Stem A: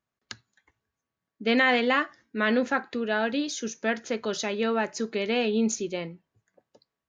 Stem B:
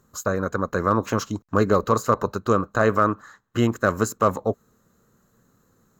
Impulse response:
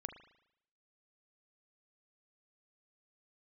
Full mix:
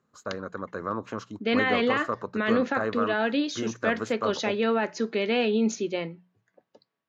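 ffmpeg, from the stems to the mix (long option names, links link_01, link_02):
-filter_complex "[0:a]alimiter=limit=-18.5dB:level=0:latency=1:release=18,volume=2.5dB[link_01];[1:a]volume=-10dB[link_02];[link_01][link_02]amix=inputs=2:normalize=0,highpass=130,lowpass=4400,bandreject=frequency=60:width_type=h:width=6,bandreject=frequency=120:width_type=h:width=6,bandreject=frequency=180:width_type=h:width=6"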